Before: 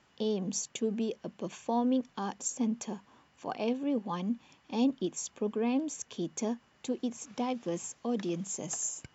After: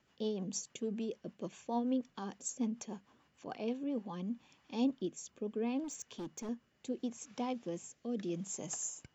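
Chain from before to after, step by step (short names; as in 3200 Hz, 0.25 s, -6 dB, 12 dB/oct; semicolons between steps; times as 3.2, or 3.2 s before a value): rotary speaker horn 6.7 Hz, later 0.75 Hz, at 3.41; 5.84–6.49 overloaded stage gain 35 dB; gain -4 dB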